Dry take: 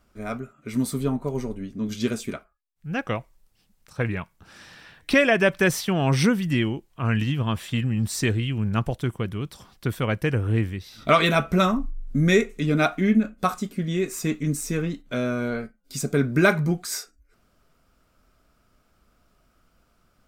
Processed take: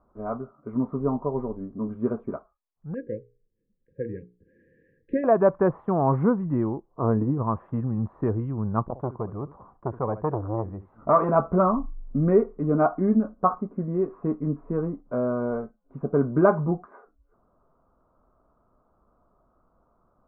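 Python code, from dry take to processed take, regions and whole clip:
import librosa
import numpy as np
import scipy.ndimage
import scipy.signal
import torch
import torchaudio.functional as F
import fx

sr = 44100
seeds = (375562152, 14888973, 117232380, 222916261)

y = fx.chain(x, sr, fx.brickwall_bandstop(low_hz=550.0, high_hz=1600.0),
    fx.low_shelf(hz=280.0, db=-7.0),
    fx.hum_notches(base_hz=60, count=8), at=(2.94, 5.24))
y = fx.chain(y, sr, fx.lowpass(hz=1200.0, slope=6),
    fx.peak_eq(hz=410.0, db=10.5, octaves=1.2), at=(6.88, 7.38))
y = fx.chain(y, sr, fx.echo_single(ms=70, db=-18.0),
    fx.transformer_sat(knee_hz=1100.0), at=(8.84, 11.29))
y = scipy.signal.sosfilt(scipy.signal.ellip(4, 1.0, 80, 1100.0, 'lowpass', fs=sr, output='sos'), y)
y = fx.low_shelf(y, sr, hz=470.0, db=-11.0)
y = y * 10.0 ** (7.5 / 20.0)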